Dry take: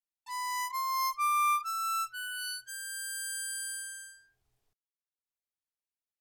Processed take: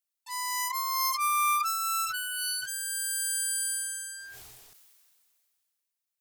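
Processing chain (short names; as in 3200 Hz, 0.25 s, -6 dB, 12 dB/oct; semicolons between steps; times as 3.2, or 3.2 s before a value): tilt +2.5 dB/oct; sustainer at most 25 dB/s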